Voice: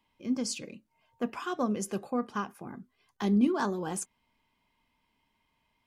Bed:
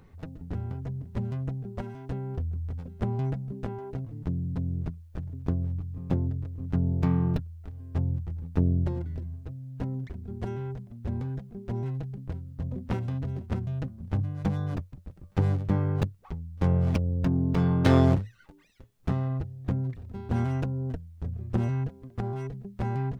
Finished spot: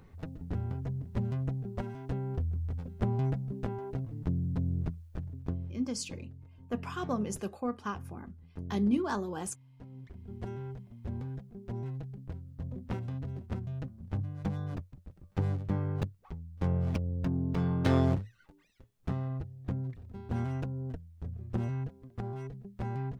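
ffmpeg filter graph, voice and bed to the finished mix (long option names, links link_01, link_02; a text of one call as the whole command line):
ffmpeg -i stem1.wav -i stem2.wav -filter_complex "[0:a]adelay=5500,volume=-3dB[link_01];[1:a]volume=10.5dB,afade=type=out:start_time=5:duration=0.88:silence=0.149624,afade=type=in:start_time=9.89:duration=0.45:silence=0.266073[link_02];[link_01][link_02]amix=inputs=2:normalize=0" out.wav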